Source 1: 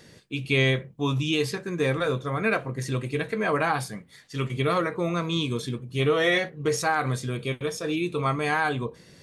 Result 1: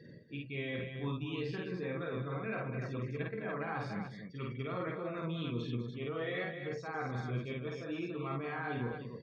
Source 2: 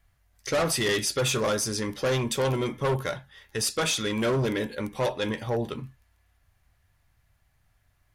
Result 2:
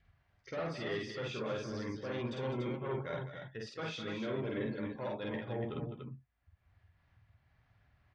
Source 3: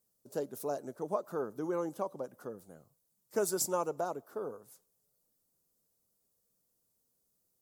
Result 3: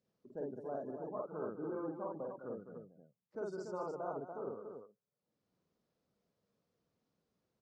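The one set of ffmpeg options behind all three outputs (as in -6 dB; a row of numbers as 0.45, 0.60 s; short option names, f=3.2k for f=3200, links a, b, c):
-af "highpass=f=190:p=1,adynamicequalizer=threshold=0.00708:dfrequency=1000:dqfactor=2:tfrequency=1000:tqfactor=2:attack=5:release=100:ratio=0.375:range=2:mode=cutabove:tftype=bell,areverse,acompressor=threshold=-39dB:ratio=4,areverse,afftdn=nr=24:nf=-52,acompressor=mode=upward:threshold=-52dB:ratio=2.5,lowpass=f=5.5k:w=0.5412,lowpass=f=5.5k:w=1.3066,bass=f=250:g=6,treble=f=4k:g=-12,aecho=1:1:49.56|204.1|288.6:0.891|0.316|0.501,volume=-2.5dB"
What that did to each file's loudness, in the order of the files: -13.0, -12.5, -7.0 LU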